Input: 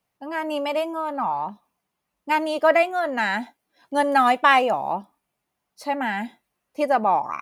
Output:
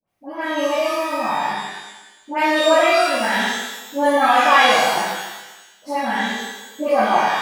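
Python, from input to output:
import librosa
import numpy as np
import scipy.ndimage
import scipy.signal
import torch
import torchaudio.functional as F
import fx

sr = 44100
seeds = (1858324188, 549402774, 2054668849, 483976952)

y = fx.dispersion(x, sr, late='highs', ms=77.0, hz=1400.0)
y = fx.rev_shimmer(y, sr, seeds[0], rt60_s=1.1, semitones=12, shimmer_db=-8, drr_db=-10.5)
y = F.gain(torch.from_numpy(y), -7.0).numpy()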